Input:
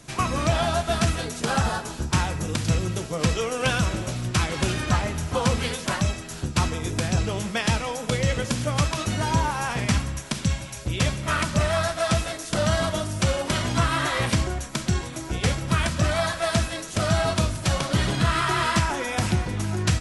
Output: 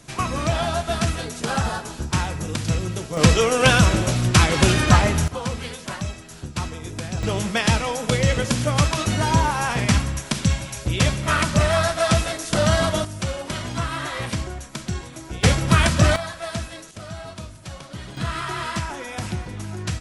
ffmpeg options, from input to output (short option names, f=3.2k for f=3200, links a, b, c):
-af "asetnsamples=n=441:p=0,asendcmd='3.17 volume volume 8dB;5.28 volume volume -5dB;7.23 volume volume 4dB;13.05 volume volume -4dB;15.43 volume volume 6.5dB;16.16 volume volume -6dB;16.91 volume volume -13dB;18.17 volume volume -5dB',volume=0dB"